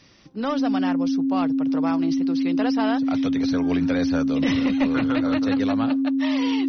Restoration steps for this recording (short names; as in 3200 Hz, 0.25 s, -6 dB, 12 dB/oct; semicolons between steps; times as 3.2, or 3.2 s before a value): notch 270 Hz, Q 30